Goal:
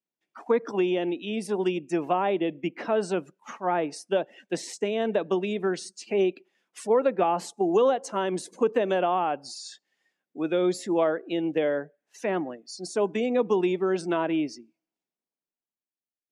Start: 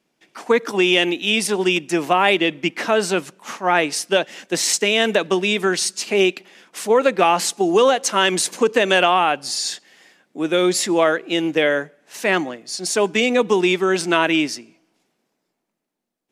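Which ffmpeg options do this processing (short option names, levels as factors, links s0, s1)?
-filter_complex "[0:a]afftdn=nr=20:nf=-34,acrossover=split=930[s0][s1];[s0]crystalizer=i=6:c=0[s2];[s1]acompressor=threshold=0.0251:ratio=6[s3];[s2][s3]amix=inputs=2:normalize=0,volume=0.473"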